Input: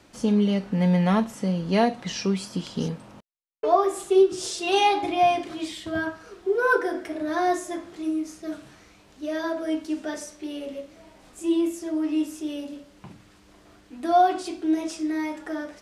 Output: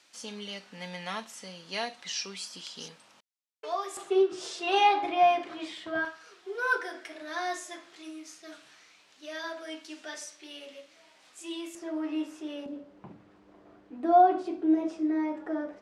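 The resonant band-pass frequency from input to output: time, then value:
resonant band-pass, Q 0.59
5,100 Hz
from 0:03.97 1,300 Hz
from 0:06.05 3,600 Hz
from 0:11.75 1,200 Hz
from 0:12.66 460 Hz

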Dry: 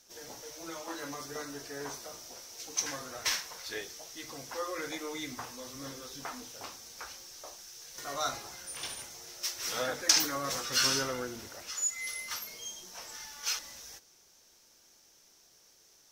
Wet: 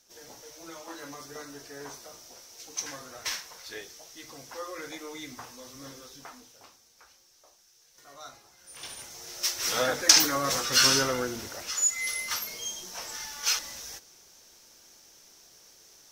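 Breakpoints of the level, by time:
0:05.99 −2 dB
0:06.88 −12.5 dB
0:08.56 −12.5 dB
0:08.78 −3.5 dB
0:09.39 +6.5 dB

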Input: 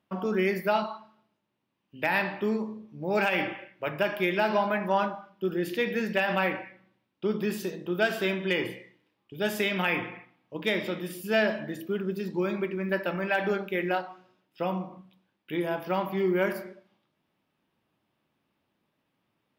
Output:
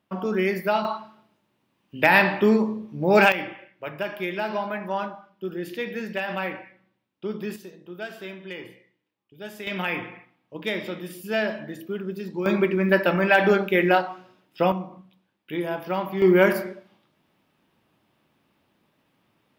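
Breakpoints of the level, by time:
+2.5 dB
from 0:00.85 +9.5 dB
from 0:03.32 −2.5 dB
from 0:07.56 −9.5 dB
from 0:09.67 −0.5 dB
from 0:12.46 +9 dB
from 0:14.72 +1.5 dB
from 0:16.22 +9 dB

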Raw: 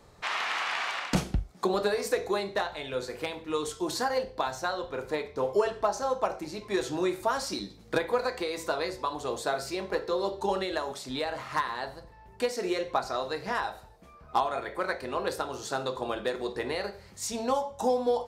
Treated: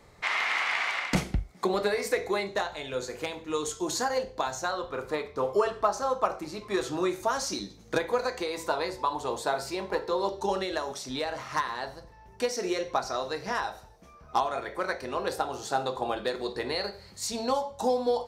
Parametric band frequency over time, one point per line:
parametric band +10 dB 0.23 octaves
2,100 Hz
from 0:02.47 6,700 Hz
from 0:04.71 1,200 Hz
from 0:07.10 6,300 Hz
from 0:08.46 910 Hz
from 0:10.29 5,800 Hz
from 0:15.31 770 Hz
from 0:16.17 4,300 Hz

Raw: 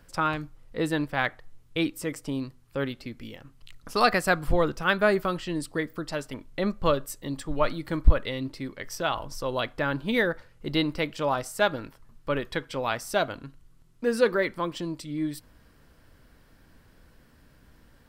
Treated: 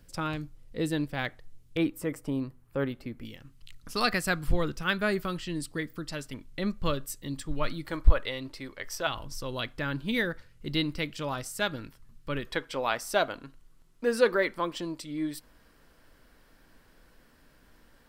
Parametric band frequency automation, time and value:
parametric band −9.5 dB 2.1 octaves
1,100 Hz
from 0:01.77 4,800 Hz
from 0:03.25 720 Hz
from 0:07.85 180 Hz
from 0:09.07 720 Hz
from 0:12.47 95 Hz

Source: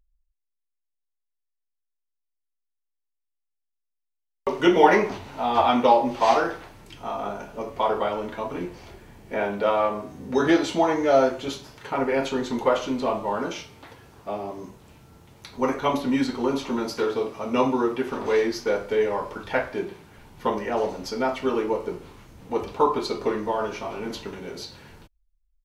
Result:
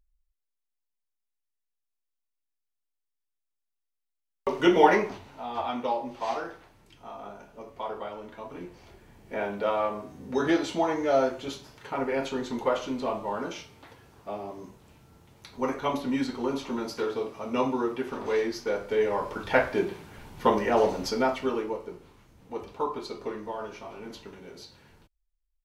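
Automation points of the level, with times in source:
0:04.84 −2.5 dB
0:05.45 −11.5 dB
0:08.23 −11.5 dB
0:09.38 −5 dB
0:18.72 −5 dB
0:19.62 +2.5 dB
0:21.05 +2.5 dB
0:21.87 −9.5 dB

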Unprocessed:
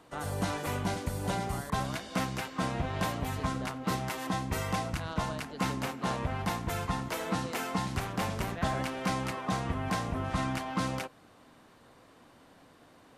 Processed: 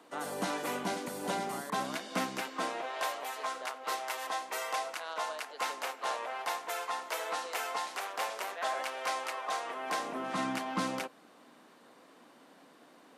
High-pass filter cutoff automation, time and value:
high-pass filter 24 dB per octave
0:02.41 220 Hz
0:02.94 490 Hz
0:09.61 490 Hz
0:10.44 200 Hz

